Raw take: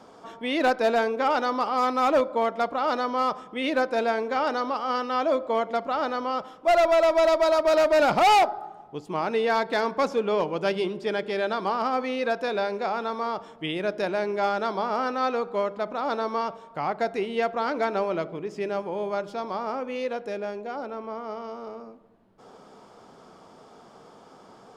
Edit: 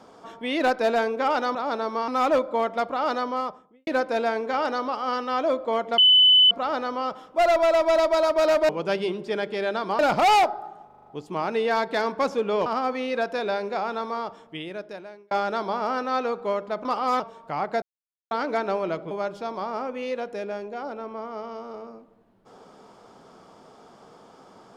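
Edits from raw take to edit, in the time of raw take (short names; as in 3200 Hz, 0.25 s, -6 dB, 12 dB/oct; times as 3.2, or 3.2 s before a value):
1.55–1.9 swap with 15.94–16.47
3–3.69 studio fade out
5.8 add tone 3010 Hz -12 dBFS 0.53 s
8.85 stutter 0.04 s, 6 plays
10.45–11.75 move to 7.98
13.12–14.4 fade out
17.09–17.58 mute
18.38–19.04 cut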